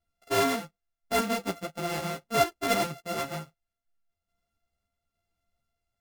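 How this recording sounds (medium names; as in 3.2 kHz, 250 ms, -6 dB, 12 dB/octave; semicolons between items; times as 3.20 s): a buzz of ramps at a fixed pitch in blocks of 64 samples; random-step tremolo; a shimmering, thickened sound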